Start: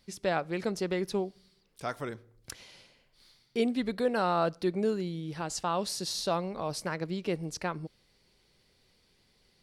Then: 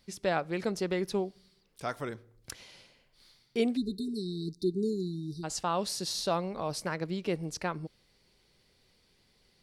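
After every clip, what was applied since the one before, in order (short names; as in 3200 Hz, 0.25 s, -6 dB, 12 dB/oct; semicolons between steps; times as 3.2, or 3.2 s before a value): spectral delete 3.77–5.44, 450–3600 Hz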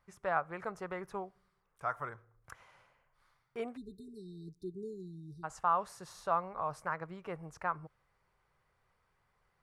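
EQ curve 140 Hz 0 dB, 220 Hz -10 dB, 310 Hz -9 dB, 1200 Hz +12 dB, 4400 Hz -18 dB, 6700 Hz -9 dB; gain -6.5 dB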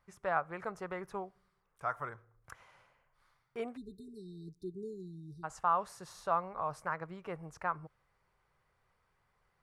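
nothing audible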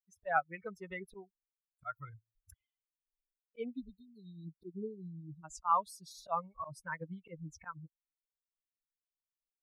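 per-bin expansion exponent 3; auto swell 0.129 s; gain +8 dB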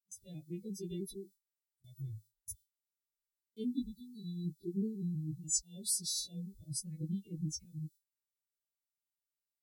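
frequency quantiser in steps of 2 st; gate with hold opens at -54 dBFS; Chebyshev band-stop 360–3700 Hz, order 4; gain +9.5 dB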